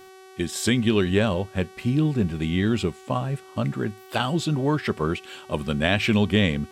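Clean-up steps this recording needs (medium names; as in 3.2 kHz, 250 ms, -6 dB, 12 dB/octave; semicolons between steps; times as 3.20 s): de-hum 378.2 Hz, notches 34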